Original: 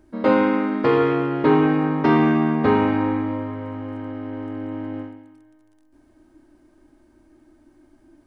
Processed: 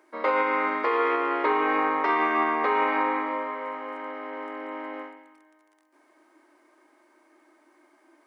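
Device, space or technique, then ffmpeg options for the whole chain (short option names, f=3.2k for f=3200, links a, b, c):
laptop speaker: -af "highpass=f=400:w=0.5412,highpass=f=400:w=1.3066,equalizer=f=1.1k:t=o:w=0.52:g=9,equalizer=f=2.1k:t=o:w=0.38:g=10,alimiter=limit=-14.5dB:level=0:latency=1:release=151"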